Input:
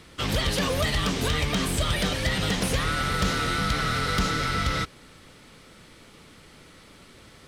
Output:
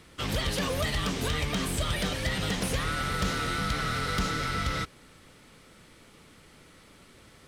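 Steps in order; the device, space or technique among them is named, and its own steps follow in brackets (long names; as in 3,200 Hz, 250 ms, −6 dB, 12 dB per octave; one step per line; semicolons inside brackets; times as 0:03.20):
exciter from parts (in parallel at −10.5 dB: high-pass filter 3,400 Hz + soft clipping −36 dBFS, distortion −9 dB + high-pass filter 3,800 Hz)
on the sum: level −4 dB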